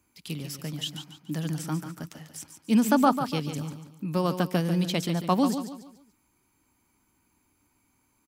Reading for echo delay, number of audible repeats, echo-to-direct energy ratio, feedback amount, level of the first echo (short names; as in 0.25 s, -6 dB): 0.144 s, 3, -8.5 dB, 36%, -9.0 dB